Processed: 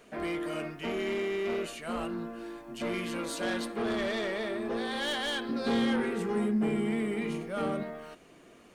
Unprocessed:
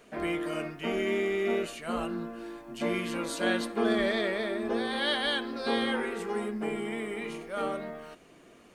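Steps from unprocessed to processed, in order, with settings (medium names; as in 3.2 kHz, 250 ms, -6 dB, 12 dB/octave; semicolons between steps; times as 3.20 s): saturation -27 dBFS, distortion -12 dB; 5.49–7.83 s: peaking EQ 170 Hz +11 dB 1.5 oct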